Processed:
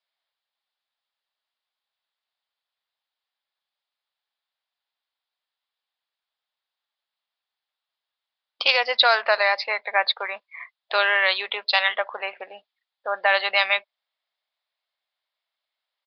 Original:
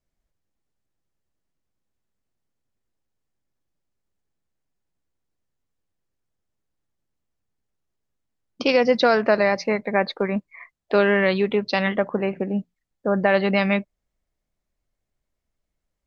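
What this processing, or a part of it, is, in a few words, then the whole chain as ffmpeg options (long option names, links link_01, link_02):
musical greeting card: -af "aresample=11025,aresample=44100,highpass=frequency=740:width=0.5412,highpass=frequency=740:width=1.3066,equalizer=frequency=3600:width_type=o:width=0.56:gain=9.5,volume=3dB"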